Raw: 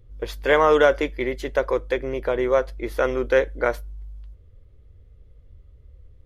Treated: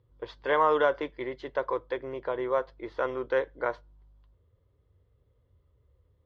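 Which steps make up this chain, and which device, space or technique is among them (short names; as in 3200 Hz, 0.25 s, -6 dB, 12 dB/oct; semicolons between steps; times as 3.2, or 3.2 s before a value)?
guitar cabinet (speaker cabinet 100–4400 Hz, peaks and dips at 220 Hz -7 dB, 1000 Hz +9 dB, 2400 Hz -6 dB); gain -8.5 dB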